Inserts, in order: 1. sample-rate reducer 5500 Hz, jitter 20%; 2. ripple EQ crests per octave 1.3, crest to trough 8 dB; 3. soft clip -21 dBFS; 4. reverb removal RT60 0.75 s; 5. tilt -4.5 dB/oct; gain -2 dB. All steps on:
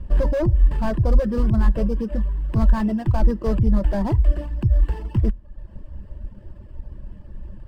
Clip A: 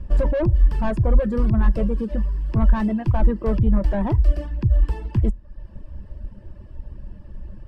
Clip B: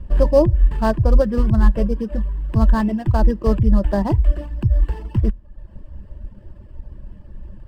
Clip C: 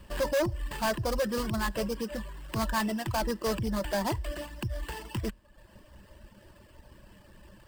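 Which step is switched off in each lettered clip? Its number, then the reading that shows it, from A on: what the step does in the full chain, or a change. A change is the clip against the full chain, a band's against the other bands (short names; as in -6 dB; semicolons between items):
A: 1, distortion -6 dB; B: 3, distortion -7 dB; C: 5, 125 Hz band -13.5 dB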